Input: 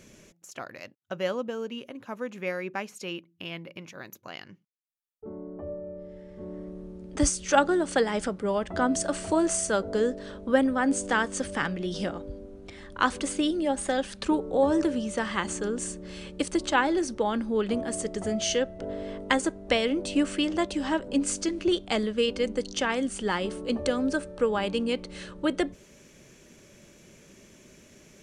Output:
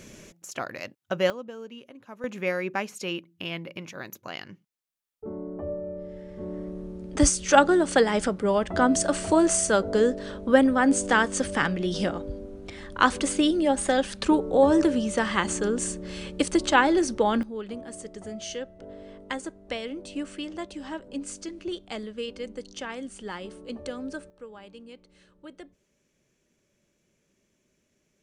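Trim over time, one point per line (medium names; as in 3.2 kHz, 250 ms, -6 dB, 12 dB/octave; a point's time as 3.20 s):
+6 dB
from 1.30 s -6.5 dB
from 2.24 s +4 dB
from 17.43 s -8.5 dB
from 24.30 s -18.5 dB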